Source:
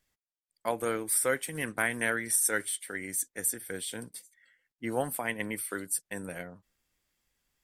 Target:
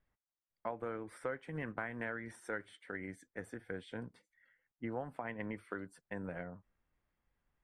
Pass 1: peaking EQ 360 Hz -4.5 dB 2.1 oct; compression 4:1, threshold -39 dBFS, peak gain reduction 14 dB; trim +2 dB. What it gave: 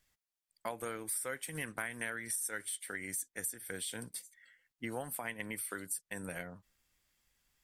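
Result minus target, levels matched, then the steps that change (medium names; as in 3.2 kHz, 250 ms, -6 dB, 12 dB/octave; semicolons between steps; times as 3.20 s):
1 kHz band -4.5 dB
add first: low-pass 1.3 kHz 12 dB/octave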